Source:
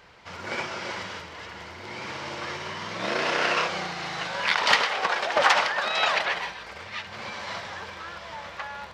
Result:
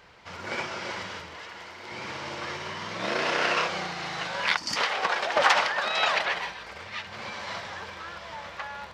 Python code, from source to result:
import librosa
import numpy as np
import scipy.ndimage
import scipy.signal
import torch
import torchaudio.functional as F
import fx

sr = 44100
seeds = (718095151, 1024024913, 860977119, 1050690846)

y = fx.low_shelf(x, sr, hz=220.0, db=-12.0, at=(1.38, 1.92))
y = fx.spec_box(y, sr, start_s=4.57, length_s=0.2, low_hz=350.0, high_hz=4400.0, gain_db=-18)
y = F.gain(torch.from_numpy(y), -1.0).numpy()